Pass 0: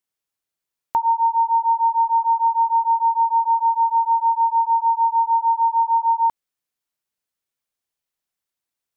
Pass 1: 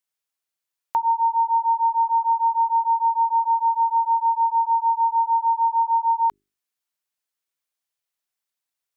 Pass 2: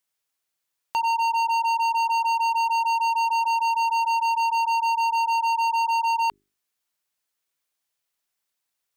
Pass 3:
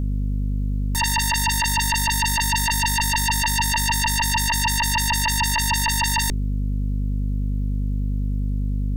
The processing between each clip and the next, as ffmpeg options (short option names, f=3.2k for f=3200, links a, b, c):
-af "lowshelf=f=500:g=-8.5,bandreject=f=50:t=h:w=6,bandreject=f=100:t=h:w=6,bandreject=f=150:t=h:w=6,bandreject=f=200:t=h:w=6,bandreject=f=250:t=h:w=6,bandreject=f=300:t=h:w=6,bandreject=f=350:t=h:w=6,bandreject=f=400:t=h:w=6"
-af "asoftclip=type=hard:threshold=-25.5dB,volume=4.5dB"
-af "aeval=exprs='val(0)+0.0158*(sin(2*PI*50*n/s)+sin(2*PI*2*50*n/s)/2+sin(2*PI*3*50*n/s)/3+sin(2*PI*4*50*n/s)/4+sin(2*PI*5*50*n/s)/5)':c=same,aeval=exprs='0.119*sin(PI/2*2.82*val(0)/0.119)':c=same,volume=2.5dB"